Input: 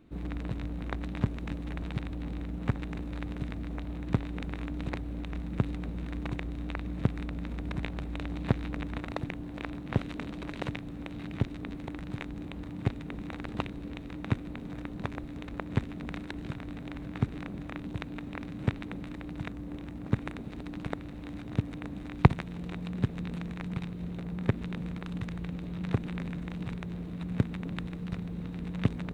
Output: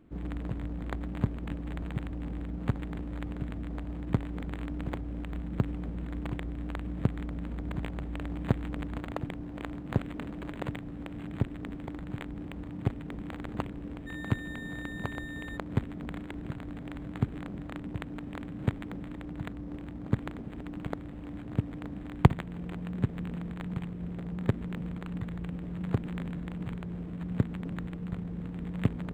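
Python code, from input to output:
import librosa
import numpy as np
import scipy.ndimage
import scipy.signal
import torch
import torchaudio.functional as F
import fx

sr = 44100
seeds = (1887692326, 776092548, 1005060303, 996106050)

y = fx.dmg_tone(x, sr, hz=1800.0, level_db=-39.0, at=(14.06, 15.56), fade=0.02)
y = np.interp(np.arange(len(y)), np.arange(len(y))[::8], y[::8])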